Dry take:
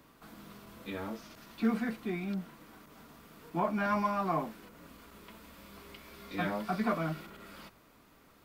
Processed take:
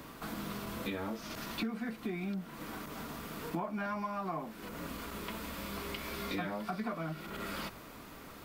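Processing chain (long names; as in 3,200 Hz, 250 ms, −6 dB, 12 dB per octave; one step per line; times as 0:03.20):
downward compressor 10 to 1, threshold −46 dBFS, peak gain reduction 21.5 dB
level +11.5 dB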